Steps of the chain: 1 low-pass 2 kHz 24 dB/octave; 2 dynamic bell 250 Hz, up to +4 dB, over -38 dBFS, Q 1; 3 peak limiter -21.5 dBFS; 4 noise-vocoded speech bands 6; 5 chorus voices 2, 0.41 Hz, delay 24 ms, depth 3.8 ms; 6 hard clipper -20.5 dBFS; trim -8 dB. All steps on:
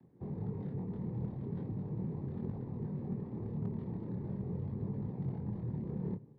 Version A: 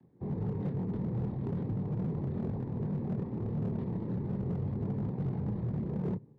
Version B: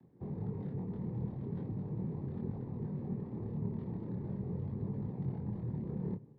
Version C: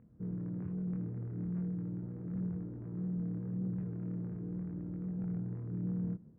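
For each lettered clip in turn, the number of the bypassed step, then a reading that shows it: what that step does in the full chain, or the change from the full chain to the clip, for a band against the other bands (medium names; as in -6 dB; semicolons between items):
3, mean gain reduction 5.5 dB; 6, distortion -30 dB; 4, momentary loudness spread change +2 LU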